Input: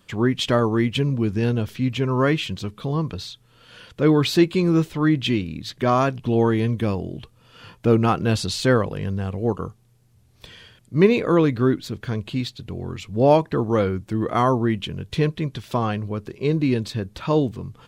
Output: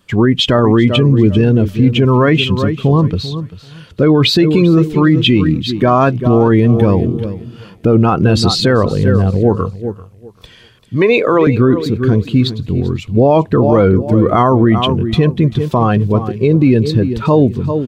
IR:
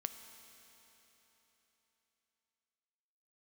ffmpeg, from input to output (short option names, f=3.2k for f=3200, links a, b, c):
-filter_complex "[0:a]asettb=1/sr,asplit=3[a][b][c];[a]atrim=end=9.554[d];[b]atrim=start=9.55:end=11.47,asetpts=PTS-STARTPTS,afade=t=in:d=0.004:c=qsin,afade=t=out:st=1.916:d=0.004:c=qsin,acrossover=split=400[e][f];[e]acompressor=threshold=-32dB:ratio=6[g];[g][f]amix=inputs=2:normalize=0[h];[c]atrim=start=11.466[i];[d][h]acrossfade=d=0.004:c1=hsin:c2=qsin[j];[j][i]acrossfade=d=0.004:c1=qsin:c2=hsin,aecho=1:1:391|782|1173:0.251|0.0779|0.0241,afftdn=nr=12:nf=-28,alimiter=level_in=15.5dB:limit=-1dB:release=50:level=0:latency=1,volume=-1dB"